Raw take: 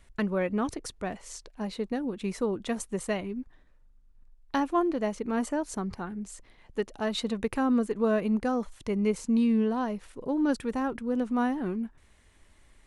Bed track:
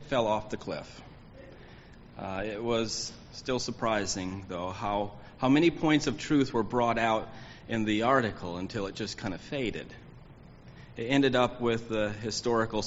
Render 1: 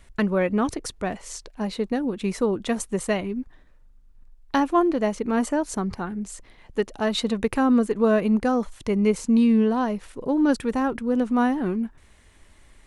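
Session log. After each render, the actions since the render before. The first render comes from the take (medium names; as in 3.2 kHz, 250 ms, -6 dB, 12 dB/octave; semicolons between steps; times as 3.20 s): trim +6 dB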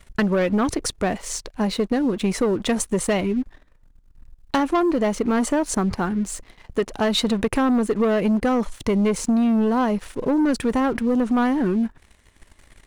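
waveshaping leveller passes 2; compression, threshold -17 dBFS, peak gain reduction 4.5 dB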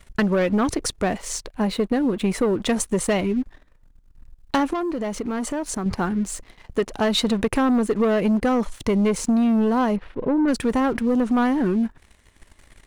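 1.43–2.58 s: peaking EQ 5.7 kHz -5.5 dB 0.8 oct; 4.73–5.86 s: compression 2.5:1, threshold -26 dBFS; 9.96–10.48 s: distance through air 360 m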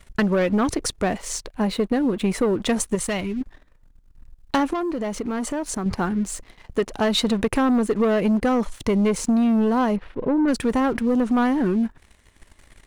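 2.95–3.41 s: peaking EQ 430 Hz -6.5 dB 2.6 oct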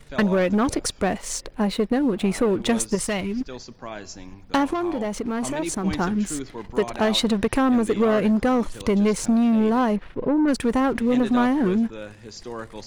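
add bed track -7 dB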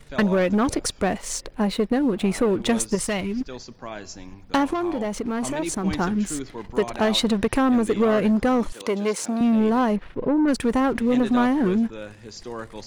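8.72–9.41 s: high-pass 320 Hz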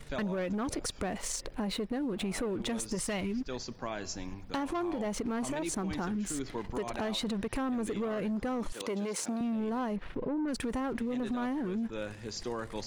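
peak limiter -22 dBFS, peak gain reduction 11 dB; compression, threshold -31 dBFS, peak gain reduction 7 dB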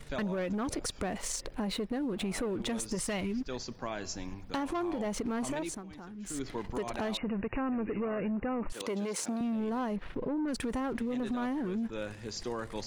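5.58–6.42 s: dip -12.5 dB, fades 0.26 s; 7.17–8.70 s: brick-wall FIR low-pass 2.9 kHz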